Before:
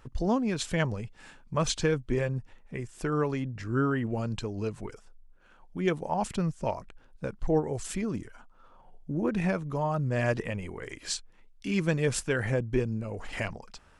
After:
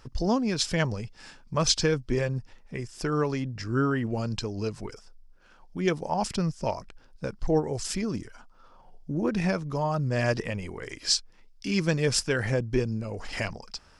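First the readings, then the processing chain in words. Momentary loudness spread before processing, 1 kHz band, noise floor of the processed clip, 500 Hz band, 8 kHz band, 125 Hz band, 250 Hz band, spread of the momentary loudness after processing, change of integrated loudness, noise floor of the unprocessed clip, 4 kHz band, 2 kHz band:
12 LU, +1.5 dB, −56 dBFS, +1.5 dB, +5.5 dB, +1.5 dB, +1.5 dB, 13 LU, +2.5 dB, −57 dBFS, +8.5 dB, +2.0 dB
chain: parametric band 5,100 Hz +13 dB 0.48 octaves
level +1.5 dB

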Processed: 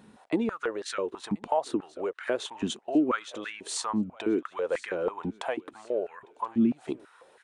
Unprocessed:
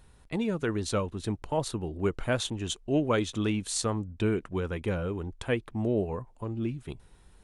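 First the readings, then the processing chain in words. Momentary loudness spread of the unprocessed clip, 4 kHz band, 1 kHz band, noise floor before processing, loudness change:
7 LU, −2.0 dB, +3.5 dB, −57 dBFS, 0.0 dB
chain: high-shelf EQ 3,700 Hz −7.5 dB
downward compressor, threshold −34 dBFS, peak gain reduction 12.5 dB
downsampling to 22,050 Hz
feedback echo with a high-pass in the loop 1,033 ms, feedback 48%, high-pass 910 Hz, level −20 dB
high-pass on a step sequencer 6.1 Hz 220–1,700 Hz
level +5.5 dB

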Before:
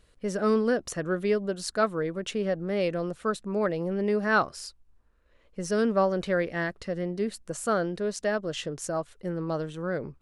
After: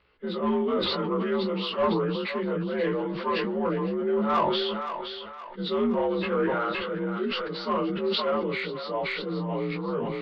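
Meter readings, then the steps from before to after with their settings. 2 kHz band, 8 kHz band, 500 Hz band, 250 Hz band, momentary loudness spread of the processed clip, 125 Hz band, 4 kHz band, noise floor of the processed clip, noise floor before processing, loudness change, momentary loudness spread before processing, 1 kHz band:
−2.0 dB, below −25 dB, +0.5 dB, +1.5 dB, 6 LU, +0.5 dB, +8.5 dB, −40 dBFS, −63 dBFS, +1.0 dB, 9 LU, +3.0 dB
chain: partials spread apart or drawn together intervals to 86%
Butterworth low-pass 4,600 Hz 72 dB per octave
dynamic equaliser 140 Hz, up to +6 dB, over −42 dBFS, Q 0.74
chorus effect 0.41 Hz, delay 16.5 ms, depth 5.7 ms
in parallel at −5 dB: soft clipping −22.5 dBFS, distortion −15 dB
on the sum: mid-hump overdrive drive 14 dB, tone 2,800 Hz, clips at −11.5 dBFS
feedback echo with a high-pass in the loop 519 ms, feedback 46%, high-pass 690 Hz, level −8 dB
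level that may fall only so fast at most 22 dB per second
level −4 dB

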